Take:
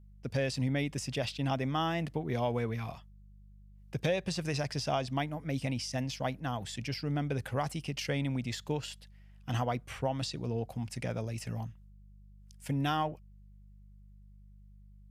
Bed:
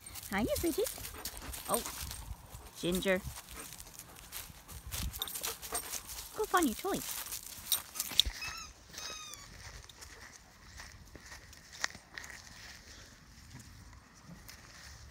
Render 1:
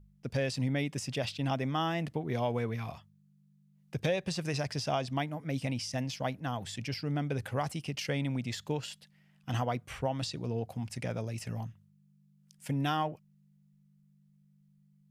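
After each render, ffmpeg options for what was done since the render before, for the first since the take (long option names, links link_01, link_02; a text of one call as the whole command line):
ffmpeg -i in.wav -af "bandreject=frequency=50:width_type=h:width=4,bandreject=frequency=100:width_type=h:width=4" out.wav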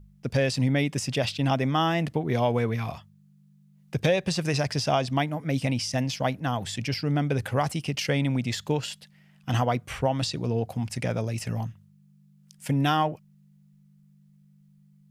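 ffmpeg -i in.wav -af "volume=7.5dB" out.wav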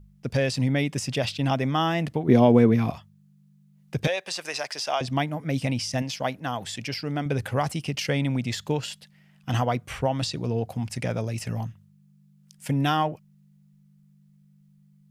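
ffmpeg -i in.wav -filter_complex "[0:a]asettb=1/sr,asplit=3[link_01][link_02][link_03];[link_01]atrim=end=2.284[link_04];[link_02]atrim=start=2.28:end=2.91,asetpts=PTS-STARTPTS,afade=type=in:duration=0.004:curve=qsin,afade=type=out:start_time=0.626:duration=0.004:curve=qsin,equalizer=frequency=270:width=0.76:gain=13.5[link_05];[link_03]atrim=start=2.906[link_06];[link_04][link_05]acrossfade=duration=0.004:curve1=hsin:curve2=qsin[link_07];[link_07][link_06]acrossfade=duration=0.004:curve1=qsin:curve2=hsin,asettb=1/sr,asplit=3[link_08][link_09][link_10];[link_08]atrim=end=4.074[link_11];[link_09]atrim=start=4.07:end=5.01,asetpts=PTS-STARTPTS,afade=type=in:duration=0.004:curve=qsin,afade=type=out:start_time=0.936:duration=0.004:curve=qsin,highpass=660[link_12];[link_10]atrim=start=5.006[link_13];[link_11][link_12]acrossfade=duration=0.004:curve1=hsin:curve2=qsin[link_14];[link_14][link_13]acrossfade=duration=0.004:curve1=qsin:curve2=hsin,asettb=1/sr,asplit=3[link_15][link_16][link_17];[link_15]atrim=end=6.024[link_18];[link_16]atrim=start=6.02:end=7.26,asetpts=PTS-STARTPTS,afade=type=in:duration=0.004:curve=qsin,afade=type=out:start_time=1.236:duration=0.004:curve=qsin,lowshelf=frequency=180:gain=-9.5[link_19];[link_17]atrim=start=7.256[link_20];[link_18][link_19]acrossfade=duration=0.004:curve1=hsin:curve2=qsin[link_21];[link_21][link_20]acrossfade=duration=0.004:curve1=qsin:curve2=hsin" out.wav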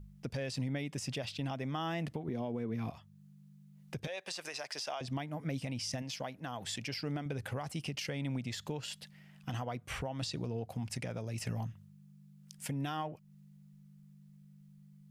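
ffmpeg -i in.wav -af "acompressor=threshold=-34dB:ratio=2.5,alimiter=level_in=3.5dB:limit=-24dB:level=0:latency=1:release=358,volume=-3.5dB" out.wav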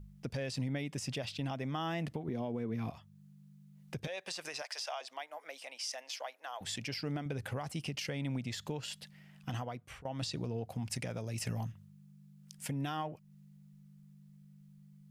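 ffmpeg -i in.wav -filter_complex "[0:a]asettb=1/sr,asplit=3[link_01][link_02][link_03];[link_01]atrim=end=4.624[link_04];[link_02]atrim=start=4.62:end=6.61,asetpts=PTS-STARTPTS,afade=type=in:duration=0.004:curve=qsin,afade=type=out:start_time=1.986:duration=0.004:curve=qsin,highpass=frequency=570:width=0.5412,highpass=frequency=570:width=1.3066[link_05];[link_03]atrim=start=6.606[link_06];[link_04][link_05]acrossfade=duration=0.004:curve1=hsin:curve2=qsin[link_07];[link_07][link_06]acrossfade=duration=0.004:curve1=qsin:curve2=hsin,asettb=1/sr,asplit=3[link_08][link_09][link_10];[link_08]atrim=end=10.874[link_11];[link_09]atrim=start=10.87:end=11.72,asetpts=PTS-STARTPTS,afade=type=in:duration=0.004:curve=qsin,afade=type=out:start_time=0.846:duration=0.004:curve=qsin,highshelf=frequency=4400:gain=4.5[link_12];[link_10]atrim=start=11.716[link_13];[link_11][link_12]acrossfade=duration=0.004:curve1=hsin:curve2=qsin[link_14];[link_14][link_13]acrossfade=duration=0.004:curve1=qsin:curve2=hsin,asplit=2[link_15][link_16];[link_15]atrim=end=10.05,asetpts=PTS-STARTPTS,afade=type=out:start_time=9.56:duration=0.49:silence=0.112202[link_17];[link_16]atrim=start=10.05,asetpts=PTS-STARTPTS,afade=type=in:duration=0.004:curve=hsin:silence=0.112202[link_18];[link_17][link_18]concat=n=2:v=0:a=1" out.wav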